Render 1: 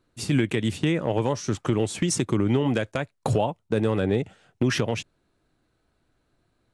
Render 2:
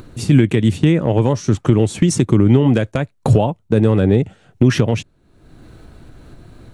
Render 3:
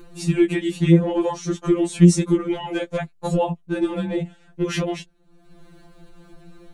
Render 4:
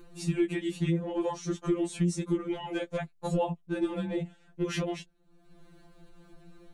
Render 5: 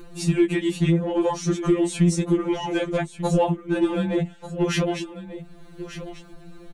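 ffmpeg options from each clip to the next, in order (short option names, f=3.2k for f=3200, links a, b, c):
-af "lowshelf=f=360:g=10,bandreject=f=5k:w=26,acompressor=mode=upward:threshold=-27dB:ratio=2.5,volume=3.5dB"
-af "afftfilt=real='re*2.83*eq(mod(b,8),0)':imag='im*2.83*eq(mod(b,8),0)':win_size=2048:overlap=0.75,volume=-2dB"
-af "alimiter=limit=-11dB:level=0:latency=1:release=344,volume=-7.5dB"
-filter_complex "[0:a]asplit=2[a][b];[b]asoftclip=type=tanh:threshold=-30.5dB,volume=-10dB[c];[a][c]amix=inputs=2:normalize=0,aecho=1:1:1190:0.224,volume=7dB"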